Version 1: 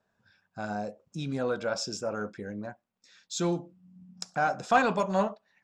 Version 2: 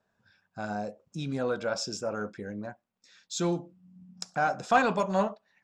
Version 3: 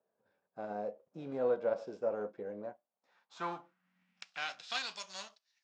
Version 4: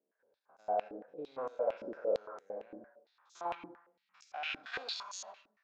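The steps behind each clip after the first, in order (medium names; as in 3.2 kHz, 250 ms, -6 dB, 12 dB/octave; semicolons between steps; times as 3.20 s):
no audible change
formants flattened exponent 0.6; band-pass sweep 500 Hz -> 5.2 kHz, 2.67–4.95 s; distance through air 73 m; trim +2 dB
spectrogram pixelated in time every 100 ms; on a send at -4 dB: reverberation RT60 0.50 s, pre-delay 79 ms; on the sum: step-sequenced band-pass 8.8 Hz 300–6400 Hz; trim +10.5 dB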